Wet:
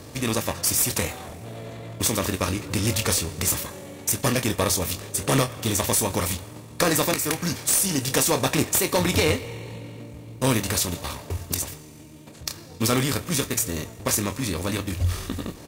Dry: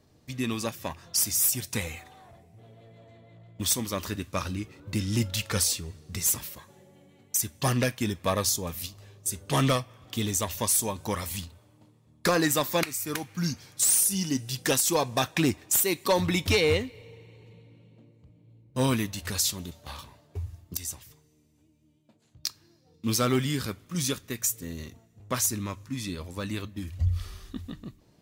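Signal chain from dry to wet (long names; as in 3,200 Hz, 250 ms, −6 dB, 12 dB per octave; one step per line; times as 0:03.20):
compressor on every frequency bin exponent 0.6
double-tracking delay 45 ms −9.5 dB
tempo change 1.8×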